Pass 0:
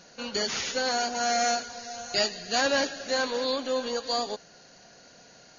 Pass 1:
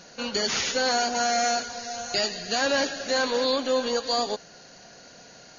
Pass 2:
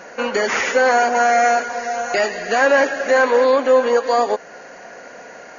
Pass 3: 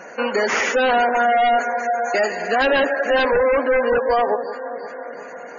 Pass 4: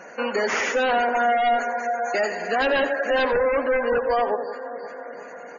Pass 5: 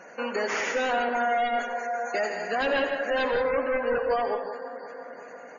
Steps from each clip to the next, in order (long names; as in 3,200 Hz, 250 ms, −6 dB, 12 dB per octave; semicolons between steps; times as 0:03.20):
brickwall limiter −19 dBFS, peak gain reduction 7 dB; level +4.5 dB
octave-band graphic EQ 125/250/500/1,000/2,000/4,000 Hz −4/+5/+9/+7/+11/−12 dB; in parallel at −2 dB: downward compressor, threshold −24 dBFS, peak gain reduction 14 dB; on the sum: low-shelf EQ 300 Hz −6 dB
delay that swaps between a low-pass and a high-pass 175 ms, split 1,100 Hz, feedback 79%, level −12.5 dB; wave folding −11.5 dBFS; gate on every frequency bin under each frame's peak −25 dB strong
single-tap delay 88 ms −14 dB; level −4 dB
reverb whose tail is shaped and stops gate 200 ms rising, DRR 7 dB; level −5 dB